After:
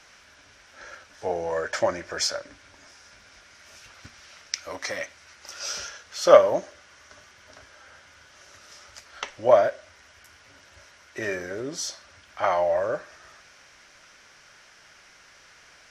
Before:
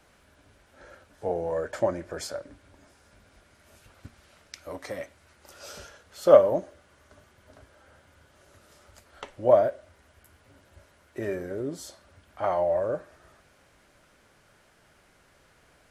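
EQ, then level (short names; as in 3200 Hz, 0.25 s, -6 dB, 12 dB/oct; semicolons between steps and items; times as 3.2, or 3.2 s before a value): bell 2100 Hz +14 dB 2.8 oct; bell 5700 Hz +14.5 dB 0.6 oct; -3.5 dB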